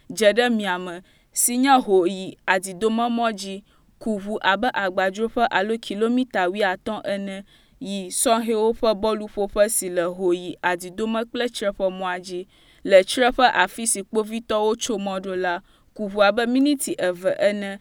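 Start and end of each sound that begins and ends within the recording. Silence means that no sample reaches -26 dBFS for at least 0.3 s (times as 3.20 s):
1.37–3.55 s
4.06–7.38 s
7.82–12.41 s
12.85–15.57 s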